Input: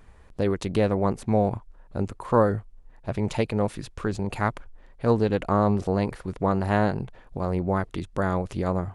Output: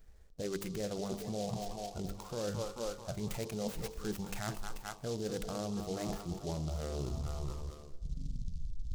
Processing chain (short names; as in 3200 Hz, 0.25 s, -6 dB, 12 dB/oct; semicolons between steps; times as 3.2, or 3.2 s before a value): tape stop at the end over 2.87 s; low shelf 140 Hz +4.5 dB; on a send: multi-head echo 0.218 s, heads first and second, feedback 47%, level -13 dB; on the sum: spectral noise reduction 12 dB; fifteen-band EQ 100 Hz -9 dB, 250 Hz -6 dB, 1000 Hz -11 dB, 4000 Hz -9 dB; limiter -22 dBFS, peak gain reduction 10.5 dB; reverse; compressor, threshold -37 dBFS, peak gain reduction 12 dB; reverse; de-hum 49.51 Hz, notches 25; noise-modulated delay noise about 4900 Hz, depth 0.075 ms; gain +3 dB